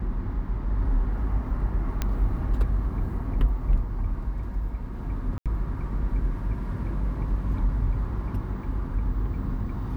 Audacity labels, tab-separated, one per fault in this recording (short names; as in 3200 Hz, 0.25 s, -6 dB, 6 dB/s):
2.020000	2.020000	pop -12 dBFS
5.380000	5.460000	gap 77 ms